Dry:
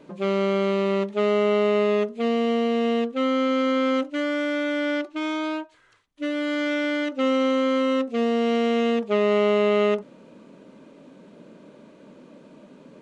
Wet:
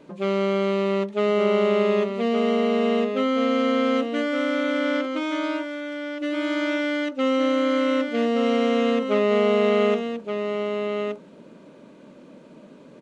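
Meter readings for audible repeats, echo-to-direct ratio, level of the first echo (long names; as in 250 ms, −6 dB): 1, −6.5 dB, −6.5 dB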